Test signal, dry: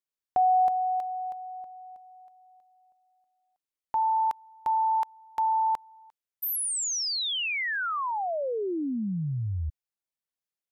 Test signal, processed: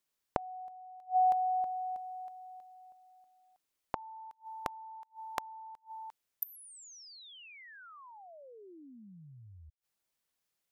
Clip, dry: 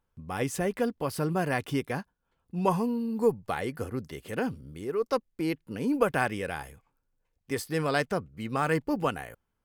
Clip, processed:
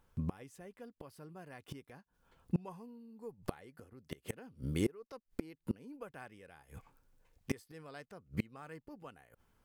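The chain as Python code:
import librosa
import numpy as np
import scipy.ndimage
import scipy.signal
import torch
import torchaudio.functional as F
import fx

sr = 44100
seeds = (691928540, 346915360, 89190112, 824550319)

y = fx.gate_flip(x, sr, shuts_db=-29.0, range_db=-31)
y = y * 10.0 ** (8.0 / 20.0)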